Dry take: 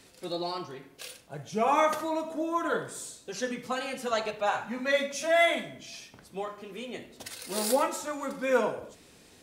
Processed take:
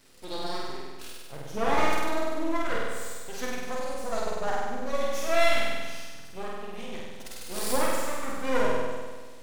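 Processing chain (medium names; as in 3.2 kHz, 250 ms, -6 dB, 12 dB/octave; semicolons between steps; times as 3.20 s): 3.58–5.01 s: high-order bell 2.2 kHz -14.5 dB; half-wave rectifier; flutter echo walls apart 8.4 m, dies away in 1.5 s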